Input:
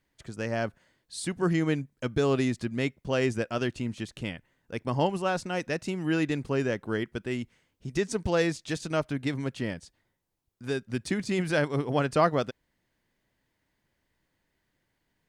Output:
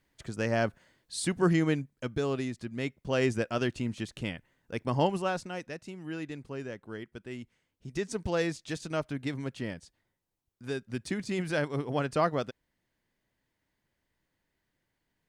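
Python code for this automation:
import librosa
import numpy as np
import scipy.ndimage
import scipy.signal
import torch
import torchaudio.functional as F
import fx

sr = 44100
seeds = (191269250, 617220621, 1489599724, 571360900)

y = fx.gain(x, sr, db=fx.line((1.39, 2.0), (2.54, -8.0), (3.23, -0.5), (5.15, -0.5), (5.8, -11.0), (7.0, -11.0), (8.19, -4.0)))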